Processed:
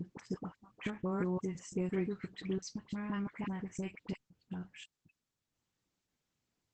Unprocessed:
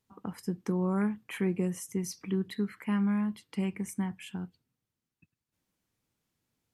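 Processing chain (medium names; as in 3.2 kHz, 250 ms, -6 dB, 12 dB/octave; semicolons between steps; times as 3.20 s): slices played last to first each 172 ms, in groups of 4; dynamic bell 210 Hz, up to -8 dB, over -44 dBFS, Q 5.3; phase dispersion highs, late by 47 ms, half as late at 1.1 kHz; trim -3 dB; Opus 12 kbps 48 kHz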